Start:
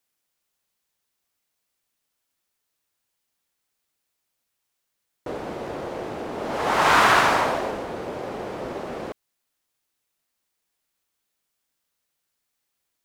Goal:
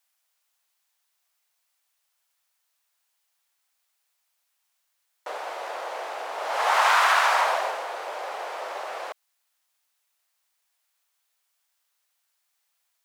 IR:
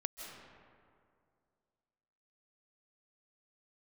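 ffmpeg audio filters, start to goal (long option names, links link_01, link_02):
-af "acompressor=threshold=-19dB:ratio=6,highpass=frequency=650:width=0.5412,highpass=frequency=650:width=1.3066,volume=3.5dB"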